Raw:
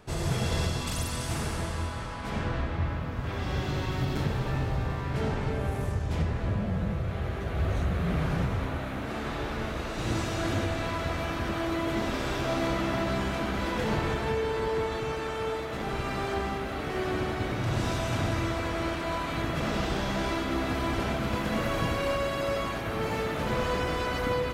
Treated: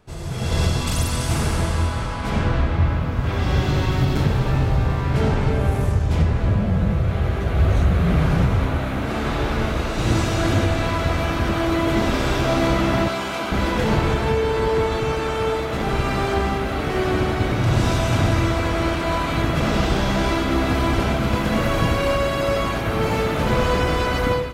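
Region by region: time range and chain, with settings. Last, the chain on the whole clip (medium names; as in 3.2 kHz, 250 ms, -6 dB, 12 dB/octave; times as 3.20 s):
13.08–13.52 s: high-pass 620 Hz 6 dB/octave + band-stop 1.8 kHz, Q 7.7
whole clip: bass shelf 140 Hz +4.5 dB; band-stop 1.8 kHz, Q 27; level rider gain up to 14 dB; trim -4.5 dB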